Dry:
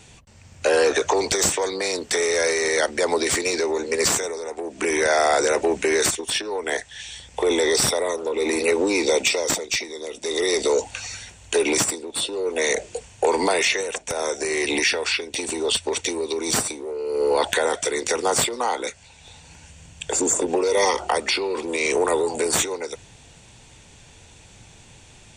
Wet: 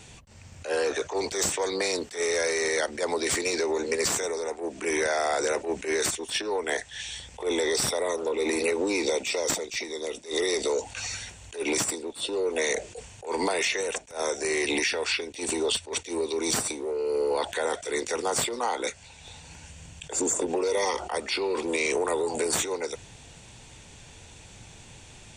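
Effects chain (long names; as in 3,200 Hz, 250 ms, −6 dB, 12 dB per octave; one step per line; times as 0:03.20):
downward compressor, threshold −23 dBFS, peak gain reduction 8.5 dB
level that may rise only so fast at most 190 dB per second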